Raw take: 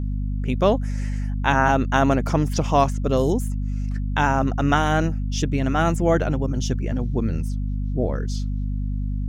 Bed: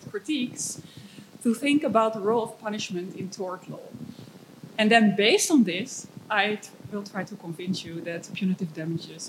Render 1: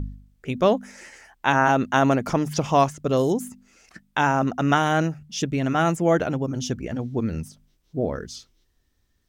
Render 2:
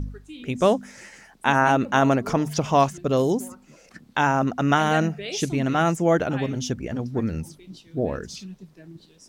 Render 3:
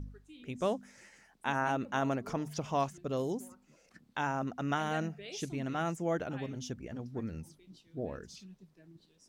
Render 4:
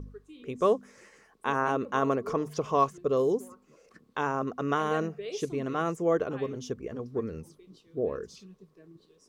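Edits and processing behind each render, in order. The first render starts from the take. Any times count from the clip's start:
de-hum 50 Hz, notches 5
add bed -13.5 dB
trim -13 dB
small resonant body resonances 440/1100 Hz, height 14 dB, ringing for 25 ms

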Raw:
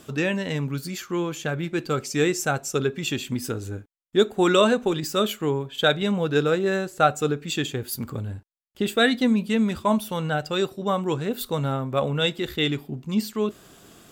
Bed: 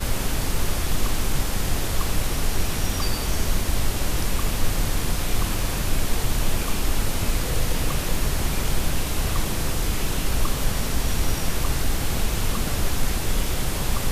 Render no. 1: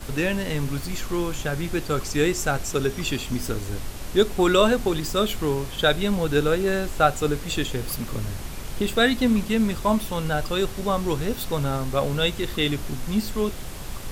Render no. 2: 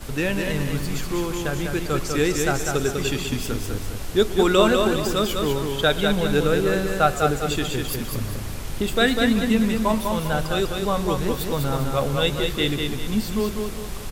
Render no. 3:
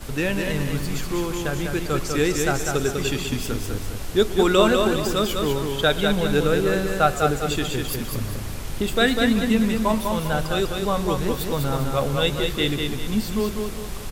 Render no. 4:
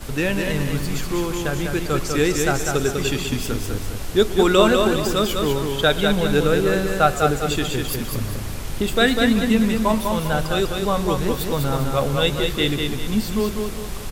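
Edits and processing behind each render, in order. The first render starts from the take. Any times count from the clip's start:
add bed -10.5 dB
feedback delay 199 ms, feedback 38%, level -4.5 dB; modulated delay 121 ms, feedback 51%, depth 122 cents, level -19 dB
no audible change
trim +2 dB

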